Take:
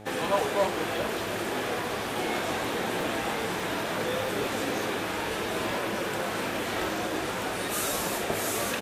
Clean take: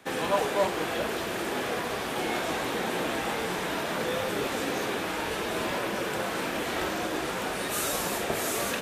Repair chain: de-hum 106.2 Hz, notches 8; interpolate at 0.98/3.01/3.60/4.26/6.21 s, 1.4 ms; inverse comb 720 ms -17.5 dB

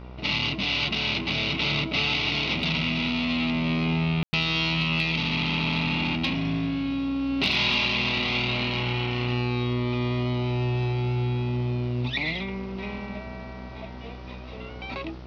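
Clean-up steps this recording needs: clip repair -13.5 dBFS; de-hum 62.4 Hz, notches 23; room tone fill 4.23–4.33 s

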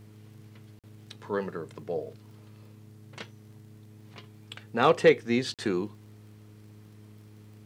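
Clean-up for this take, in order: clip repair -9.5 dBFS; de-click; de-hum 105.8 Hz, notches 4; interpolate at 0.79/5.54 s, 47 ms

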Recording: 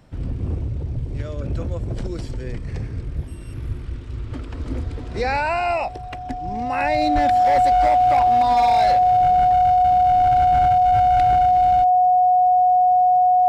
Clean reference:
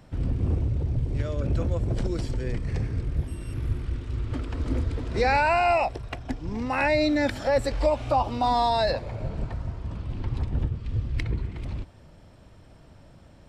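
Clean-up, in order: clip repair -12 dBFS; band-stop 730 Hz, Q 30; de-plosive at 7.14 s

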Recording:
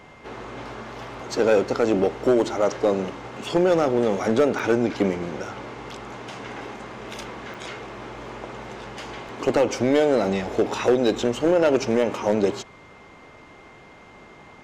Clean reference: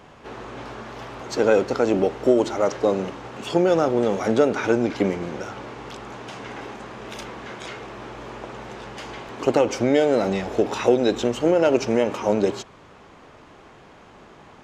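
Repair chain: clip repair -11.5 dBFS; band-stop 2.1 kHz, Q 30; interpolate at 4.59/7.54 s, 5.6 ms

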